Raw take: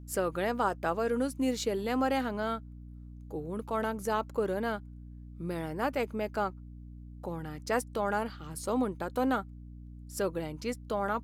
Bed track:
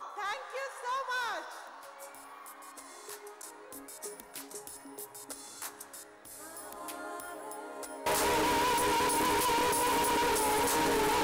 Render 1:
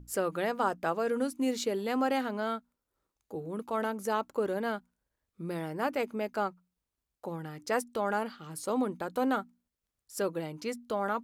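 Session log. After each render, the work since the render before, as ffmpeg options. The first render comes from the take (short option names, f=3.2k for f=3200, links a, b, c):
-af "bandreject=f=60:t=h:w=6,bandreject=f=120:t=h:w=6,bandreject=f=180:t=h:w=6,bandreject=f=240:t=h:w=6,bandreject=f=300:t=h:w=6"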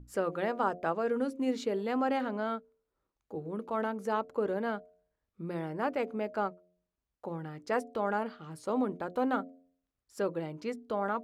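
-af "aemphasis=mode=reproduction:type=75kf,bandreject=f=89.18:t=h:w=4,bandreject=f=178.36:t=h:w=4,bandreject=f=267.54:t=h:w=4,bandreject=f=356.72:t=h:w=4,bandreject=f=445.9:t=h:w=4,bandreject=f=535.08:t=h:w=4,bandreject=f=624.26:t=h:w=4,bandreject=f=713.44:t=h:w=4"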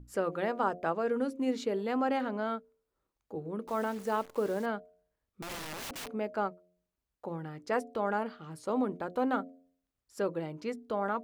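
-filter_complex "[0:a]asettb=1/sr,asplit=3[a][b][c];[a]atrim=end=3.674[d];[b]atrim=start=3.67:end=4.66,asetpts=PTS-STARTPTS,afade=t=in:d=0.004:c=qsin,afade=t=out:st=0.986:d=0.004:c=qsin,acrusher=bits=9:dc=4:mix=0:aa=0.000001[e];[c]atrim=start=4.656[f];[d][e]acrossfade=d=0.004:c1=hsin:c2=qsin[g];[g][f]acrossfade=d=0.004:c1=qsin:c2=hsin,asettb=1/sr,asplit=3[h][i][j];[h]atrim=end=5.414[k];[i]atrim=start=5.41:end=6.13,asetpts=PTS-STARTPTS,afade=t=in:d=0.004:c=qsin,afade=t=out:st=0.716:d=0.004:c=qsin,aeval=exprs='(mod(63.1*val(0)+1,2)-1)/63.1':c=same[l];[j]atrim=start=6.126[m];[k][l]acrossfade=d=0.004:c1=hsin:c2=qsin[n];[n][m]acrossfade=d=0.004:c1=qsin:c2=hsin"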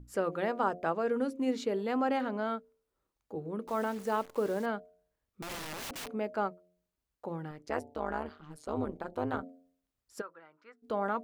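-filter_complex "[0:a]asettb=1/sr,asplit=3[a][b][c];[a]atrim=end=7.514[d];[b]atrim=start=7.51:end=9.43,asetpts=PTS-STARTPTS,afade=t=in:d=0.004:c=qsin,afade=t=out:st=1.916:d=0.004:c=qsin,tremolo=f=150:d=0.947[e];[c]atrim=start=9.426[f];[d][e]acrossfade=d=0.004:c1=hsin:c2=qsin[g];[g][f]acrossfade=d=0.004:c1=qsin:c2=hsin,asplit=3[h][i][j];[h]afade=t=out:st=10.2:d=0.02[k];[i]bandpass=f=1.4k:t=q:w=4.1,afade=t=in:st=10.2:d=0.02,afade=t=out:st=10.82:d=0.02[l];[j]afade=t=in:st=10.82:d=0.02[m];[k][l][m]amix=inputs=3:normalize=0"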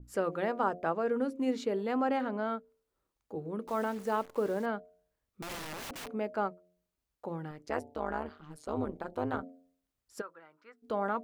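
-af "adynamicequalizer=threshold=0.00447:dfrequency=2500:dqfactor=0.7:tfrequency=2500:tqfactor=0.7:attack=5:release=100:ratio=0.375:range=2.5:mode=cutabove:tftype=highshelf"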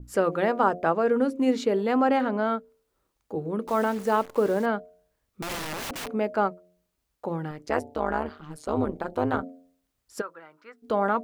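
-af "volume=8dB"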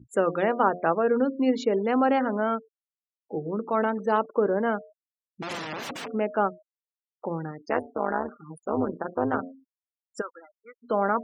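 -af "highpass=130,afftfilt=real='re*gte(hypot(re,im),0.0141)':imag='im*gte(hypot(re,im),0.0141)':win_size=1024:overlap=0.75"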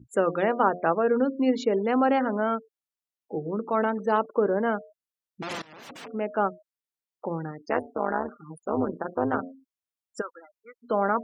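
-filter_complex "[0:a]asplit=2[a][b];[a]atrim=end=5.62,asetpts=PTS-STARTPTS,afade=t=out:st=5.616:d=0.004:c=hsin:silence=0.0891251[c];[b]atrim=start=5.62,asetpts=PTS-STARTPTS,afade=t=in:d=0.87:silence=0.0891251[d];[c][d]concat=n=2:v=0:a=1"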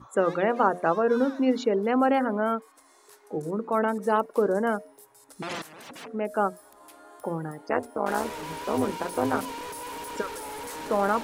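-filter_complex "[1:a]volume=-8.5dB[a];[0:a][a]amix=inputs=2:normalize=0"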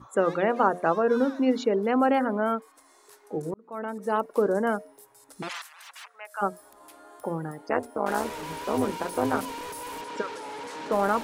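-filter_complex "[0:a]asplit=3[a][b][c];[a]afade=t=out:st=5.48:d=0.02[d];[b]highpass=f=980:w=0.5412,highpass=f=980:w=1.3066,afade=t=in:st=5.48:d=0.02,afade=t=out:st=6.41:d=0.02[e];[c]afade=t=in:st=6.41:d=0.02[f];[d][e][f]amix=inputs=3:normalize=0,asettb=1/sr,asplit=3[g][h][i];[g]atrim=end=10.014[j];[h]atrim=start=10.01:end=10.92,asetpts=PTS-STARTPTS,afade=t=in:d=0.004:c=qsin,afade=t=out:st=0.906:d=0.004:c=qsin,highpass=140,lowpass=5.7k[k];[i]atrim=start=10.916[l];[j][k]acrossfade=d=0.004:c1=hsin:c2=qsin[m];[m][l]acrossfade=d=0.004:c1=qsin:c2=hsin,asplit=2[n][o];[n]atrim=end=3.54,asetpts=PTS-STARTPTS,afade=t=out:st=3.536:d=0.004:c=hsin[p];[o]atrim=start=3.54,asetpts=PTS-STARTPTS,afade=t=in:d=0.81[q];[p][q]concat=n=2:v=0:a=1"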